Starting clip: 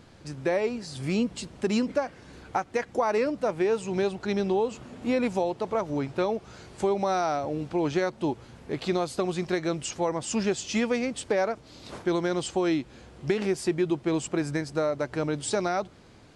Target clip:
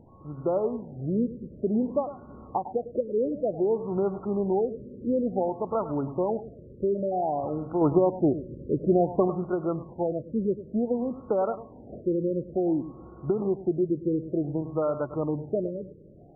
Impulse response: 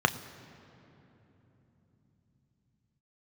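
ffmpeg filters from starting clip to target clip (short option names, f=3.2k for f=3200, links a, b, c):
-filter_complex "[0:a]asettb=1/sr,asplit=3[a][b][c];[a]atrim=end=7.814[d];[b]atrim=start=7.81:end=9.28,asetpts=PTS-STARTPTS,afade=t=in:d=0.004:c=qsin,afade=t=out:st=1.466:d=0.004:c=qsin,acontrast=37[e];[c]atrim=start=9.276[f];[d][e]acrossfade=d=0.004:c1=hsin:c2=qsin[g];[g][f]acrossfade=d=0.004:c1=qsin:c2=hsin,aeval=exprs='val(0)+0.002*sin(2*PI*1100*n/s)':c=same,asplit=2[h][i];[1:a]atrim=start_sample=2205,adelay=103[j];[i][j]afir=irnorm=-1:irlink=0,volume=-26dB[k];[h][k]amix=inputs=2:normalize=0,afftfilt=real='re*lt(b*sr/1024,570*pow(1500/570,0.5+0.5*sin(2*PI*0.55*pts/sr)))':imag='im*lt(b*sr/1024,570*pow(1500/570,0.5+0.5*sin(2*PI*0.55*pts/sr)))':win_size=1024:overlap=0.75"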